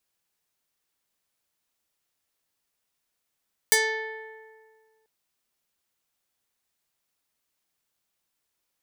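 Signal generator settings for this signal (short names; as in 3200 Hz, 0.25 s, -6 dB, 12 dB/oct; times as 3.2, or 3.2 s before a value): plucked string A4, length 1.34 s, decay 1.84 s, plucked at 0.34, medium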